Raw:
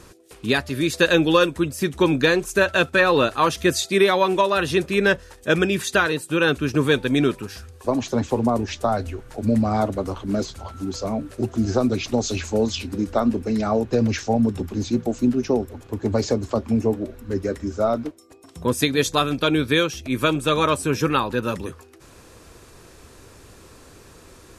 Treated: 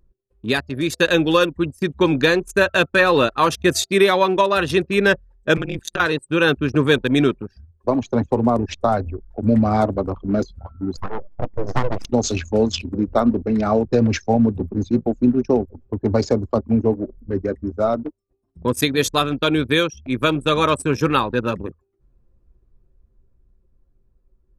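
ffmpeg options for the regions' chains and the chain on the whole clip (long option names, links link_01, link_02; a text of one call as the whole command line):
ffmpeg -i in.wav -filter_complex "[0:a]asettb=1/sr,asplit=3[link_01][link_02][link_03];[link_01]atrim=end=5.574[link_04];[link_02]atrim=start=5.57:end=6,asetpts=PTS-STARTPTS,afade=type=in:duration=0.004:curve=qsin,afade=type=out:start_time=0.426:duration=0.004:curve=qsin,afreqshift=-41,acompressor=threshold=-19dB:ratio=12:attack=3.2:release=140:knee=1:detection=peak,tremolo=f=160:d=0.947[link_05];[link_03]atrim=start=5.996[link_06];[link_04][link_05]acrossfade=duration=0.004:curve1=hsin:curve2=qsin[link_07];[link_07][link_06]acrossfade=duration=0.004:curve1=qsin:curve2=hsin,asettb=1/sr,asplit=3[link_08][link_09][link_10];[link_08]atrim=end=10.974[link_11];[link_09]atrim=start=10.97:end=12.05,asetpts=PTS-STARTPTS,afade=type=in:duration=0.004:curve=qsin,afade=type=out:start_time=1.076:duration=0.004:curve=qsin,lowshelf=frequency=82:gain=-11.5,aeval=exprs='abs(val(0))':channel_layout=same[link_12];[link_10]atrim=start=12.046[link_13];[link_11][link_12]acrossfade=duration=0.004:curve1=hsin:curve2=qsin[link_14];[link_14][link_13]acrossfade=duration=0.004:curve1=qsin:curve2=hsin,anlmdn=100,dynaudnorm=framelen=110:gausssize=31:maxgain=4dB,highshelf=frequency=12000:gain=5.5" out.wav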